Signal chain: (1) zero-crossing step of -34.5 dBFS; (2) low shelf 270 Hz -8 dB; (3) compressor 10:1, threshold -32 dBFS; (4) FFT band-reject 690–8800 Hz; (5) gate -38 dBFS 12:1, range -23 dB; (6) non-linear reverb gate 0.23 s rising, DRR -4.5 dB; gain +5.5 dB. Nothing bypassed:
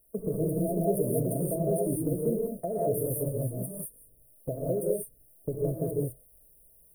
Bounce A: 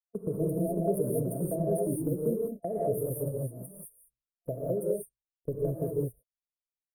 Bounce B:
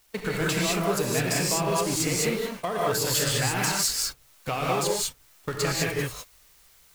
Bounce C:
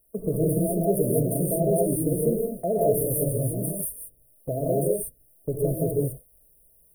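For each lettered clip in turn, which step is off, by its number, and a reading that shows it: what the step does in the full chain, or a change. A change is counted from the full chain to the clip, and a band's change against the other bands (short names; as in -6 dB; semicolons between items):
1, distortion -12 dB; 4, 8 kHz band +13.0 dB; 3, mean gain reduction 2.5 dB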